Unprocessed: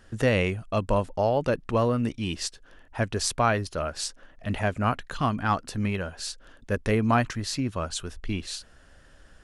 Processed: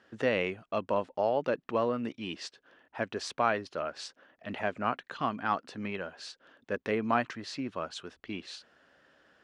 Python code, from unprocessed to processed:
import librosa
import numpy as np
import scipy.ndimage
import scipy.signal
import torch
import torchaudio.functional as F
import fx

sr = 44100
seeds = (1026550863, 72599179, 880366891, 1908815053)

y = fx.bandpass_edges(x, sr, low_hz=250.0, high_hz=3900.0)
y = y * librosa.db_to_amplitude(-4.0)